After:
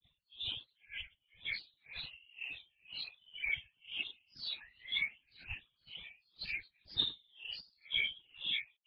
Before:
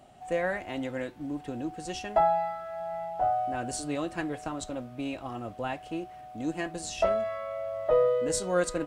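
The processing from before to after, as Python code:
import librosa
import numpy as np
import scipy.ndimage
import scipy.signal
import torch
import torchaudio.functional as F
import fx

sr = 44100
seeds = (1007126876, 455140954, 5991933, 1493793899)

p1 = fx.octave_mirror(x, sr, pivot_hz=400.0)
p2 = fx.high_shelf(p1, sr, hz=2300.0, db=6.5)
p3 = p2 + fx.echo_single(p2, sr, ms=1136, db=-3.5, dry=0)
p4 = fx.spec_paint(p3, sr, seeds[0], shape='fall', start_s=4.64, length_s=0.4, low_hz=610.0, high_hz=1300.0, level_db=-26.0)
p5 = 10.0 ** (-22.0 / 20.0) * np.tanh(p4 / 10.0 ** (-22.0 / 20.0))
p6 = p4 + F.gain(torch.from_numpy(p5), -4.0).numpy()
p7 = fx.freq_invert(p6, sr, carrier_hz=3600)
p8 = fx.tilt_eq(p7, sr, slope=-4.0)
p9 = fx.whisperise(p8, sr, seeds[1])
p10 = fx.granulator(p9, sr, seeds[2], grain_ms=204.0, per_s=12.0, spray_ms=100.0, spread_st=7)
p11 = p10 * 10.0 ** (-35 * (0.5 - 0.5 * np.cos(2.0 * np.pi * 2.0 * np.arange(len(p10)) / sr)) / 20.0)
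y = F.gain(torch.from_numpy(p11), -2.0).numpy()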